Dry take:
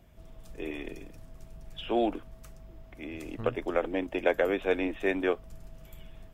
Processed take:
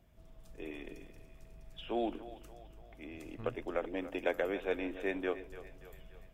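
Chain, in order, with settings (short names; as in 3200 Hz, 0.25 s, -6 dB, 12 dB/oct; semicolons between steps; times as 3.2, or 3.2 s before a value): 3.97–4.43 high shelf 4900 Hz +6.5 dB; split-band echo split 410 Hz, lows 0.122 s, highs 0.289 s, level -14 dB; gain -7.5 dB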